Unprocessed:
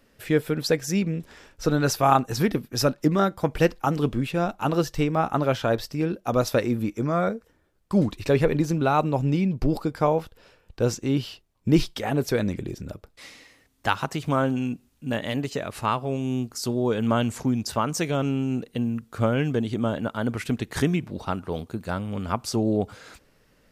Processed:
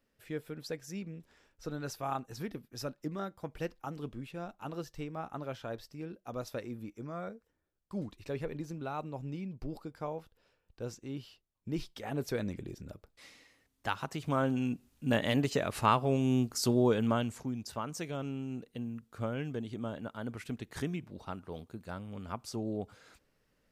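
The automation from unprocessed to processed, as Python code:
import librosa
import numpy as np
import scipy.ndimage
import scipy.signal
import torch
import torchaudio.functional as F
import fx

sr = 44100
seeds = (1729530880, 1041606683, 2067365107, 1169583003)

y = fx.gain(x, sr, db=fx.line((11.76, -17.0), (12.21, -10.5), (14.0, -10.5), (15.1, -1.5), (16.81, -1.5), (17.44, -13.0)))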